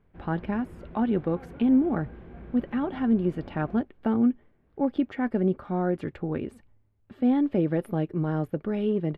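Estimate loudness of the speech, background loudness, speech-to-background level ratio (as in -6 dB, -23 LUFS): -27.5 LUFS, -46.0 LUFS, 18.5 dB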